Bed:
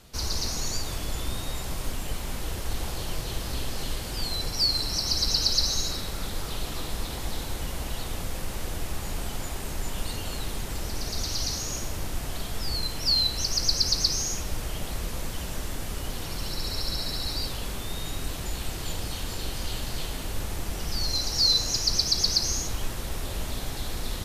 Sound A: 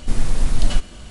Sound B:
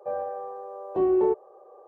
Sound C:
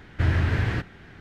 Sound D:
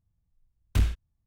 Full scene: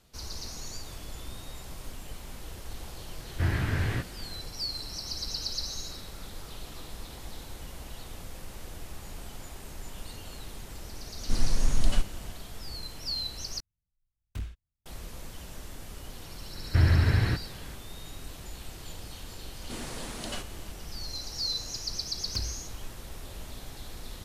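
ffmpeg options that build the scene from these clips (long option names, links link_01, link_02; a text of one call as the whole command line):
ffmpeg -i bed.wav -i cue0.wav -i cue1.wav -i cue2.wav -i cue3.wav -filter_complex "[3:a]asplit=2[link_01][link_02];[1:a]asplit=2[link_03][link_04];[4:a]asplit=2[link_05][link_06];[0:a]volume=-10dB[link_07];[link_01]flanger=delay=16.5:depth=5.3:speed=2.4[link_08];[link_02]lowshelf=frequency=140:gain=5.5[link_09];[link_04]highpass=260[link_10];[link_06]acompressor=threshold=-25dB:ratio=6:attack=3.2:release=140:knee=1:detection=peak[link_11];[link_07]asplit=2[link_12][link_13];[link_12]atrim=end=13.604[link_14];[link_05]atrim=end=1.26,asetpts=PTS-STARTPTS,volume=-13dB[link_15];[link_13]atrim=start=14.856[link_16];[link_08]atrim=end=1.2,asetpts=PTS-STARTPTS,volume=-1.5dB,afade=type=in:duration=0.004:curve=hsin,afade=type=out:start_time=1.196:duration=0.004:curve=hsin,adelay=3200[link_17];[link_03]atrim=end=1.1,asetpts=PTS-STARTPTS,volume=-6.5dB,afade=type=in:duration=0.004:curve=hsin,afade=type=out:start_time=1.096:duration=0.004:curve=hsin,adelay=494802S[link_18];[link_09]atrim=end=1.2,asetpts=PTS-STARTPTS,volume=-3dB,afade=type=in:duration=0.004:curve=hsin,afade=type=out:start_time=1.196:duration=0.004:curve=hsin,adelay=16550[link_19];[link_10]atrim=end=1.1,asetpts=PTS-STARTPTS,volume=-6.5dB,afade=type=in:duration=0.004:curve=hsin,afade=type=out:start_time=1.096:duration=0.004:curve=hsin,adelay=19620[link_20];[link_11]atrim=end=1.26,asetpts=PTS-STARTPTS,volume=-6.5dB,afade=type=in:duration=0.004:curve=hsin,afade=type=out:start_time=1.256:duration=0.004:curve=hsin,adelay=21600[link_21];[link_14][link_15]acrossfade=duration=0.004:curve1=hsin:curve2=hsin[link_22];[link_22][link_16]acrossfade=duration=0.004:curve1=hsin:curve2=hsin[link_23];[link_23][link_17][link_18][link_19][link_20][link_21]amix=inputs=6:normalize=0" out.wav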